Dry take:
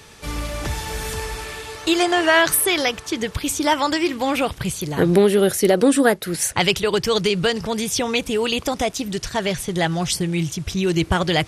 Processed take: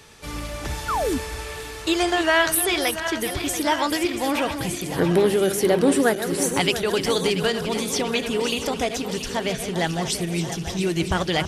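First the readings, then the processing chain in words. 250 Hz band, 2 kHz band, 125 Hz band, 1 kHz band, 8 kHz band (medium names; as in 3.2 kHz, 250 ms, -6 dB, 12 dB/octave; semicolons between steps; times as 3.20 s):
-3.0 dB, -2.5 dB, -3.5 dB, -2.5 dB, -2.5 dB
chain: backward echo that repeats 342 ms, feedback 78%, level -10 dB; painted sound fall, 0.88–1.18 s, 230–1500 Hz -20 dBFS; hum notches 50/100/150/200 Hz; trim -3.5 dB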